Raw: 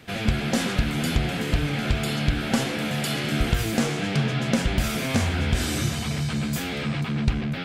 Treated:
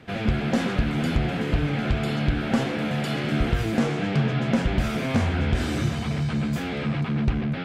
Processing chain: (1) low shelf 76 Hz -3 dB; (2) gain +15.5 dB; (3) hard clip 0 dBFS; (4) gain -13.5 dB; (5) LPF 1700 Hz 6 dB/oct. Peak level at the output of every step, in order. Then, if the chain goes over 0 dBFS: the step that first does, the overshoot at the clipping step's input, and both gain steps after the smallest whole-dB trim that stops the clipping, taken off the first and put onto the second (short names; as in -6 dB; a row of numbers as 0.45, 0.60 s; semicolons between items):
-9.0, +6.5, 0.0, -13.5, -13.5 dBFS; step 2, 6.5 dB; step 2 +8.5 dB, step 4 -6.5 dB